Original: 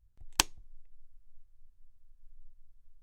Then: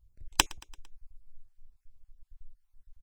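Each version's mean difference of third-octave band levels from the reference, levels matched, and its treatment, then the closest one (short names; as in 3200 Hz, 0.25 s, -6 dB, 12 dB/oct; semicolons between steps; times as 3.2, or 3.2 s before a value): 1.5 dB: random spectral dropouts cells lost 34%; on a send: feedback echo 0.113 s, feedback 58%, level -24 dB; on the sum: gain +3.5 dB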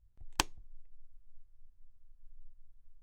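2.5 dB: high shelf 2600 Hz -8.5 dB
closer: first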